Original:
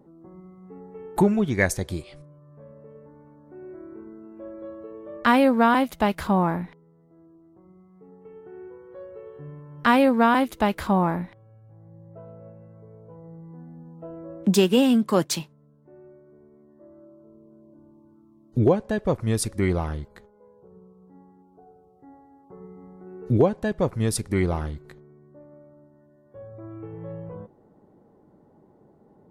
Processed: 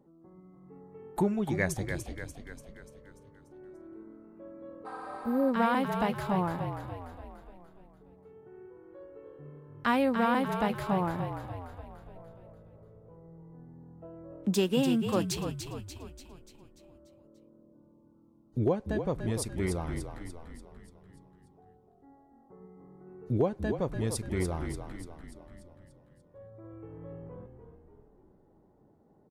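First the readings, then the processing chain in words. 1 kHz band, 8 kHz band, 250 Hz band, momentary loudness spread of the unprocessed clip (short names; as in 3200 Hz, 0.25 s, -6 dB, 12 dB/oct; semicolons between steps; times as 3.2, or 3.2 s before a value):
-8.0 dB, -7.5 dB, -8.0 dB, 23 LU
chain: frequency-shifting echo 0.292 s, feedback 54%, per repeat -42 Hz, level -7.5 dB; spectral repair 4.88–5.46, 610–11000 Hz after; gain -8.5 dB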